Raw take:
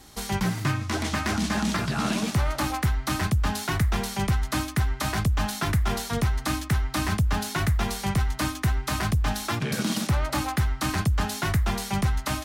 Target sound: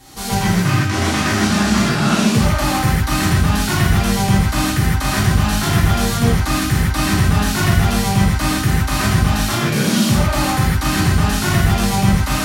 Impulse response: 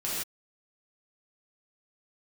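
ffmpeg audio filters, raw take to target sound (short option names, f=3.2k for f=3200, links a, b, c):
-filter_complex "[0:a]acontrast=48[a];[1:a]atrim=start_sample=2205[b];[a][b]afir=irnorm=-1:irlink=0,volume=-2dB"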